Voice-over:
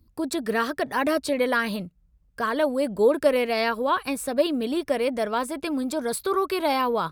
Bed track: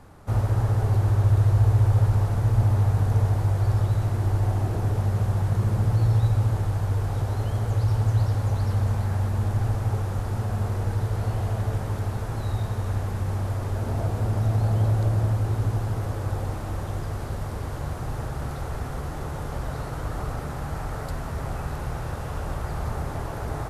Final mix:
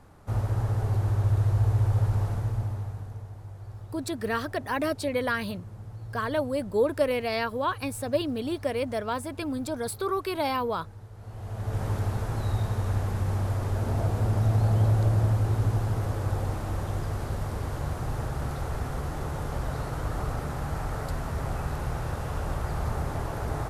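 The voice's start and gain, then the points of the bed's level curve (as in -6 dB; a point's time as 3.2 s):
3.75 s, -4.5 dB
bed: 2.3 s -4.5 dB
3.26 s -19.5 dB
11.15 s -19.5 dB
11.84 s -0.5 dB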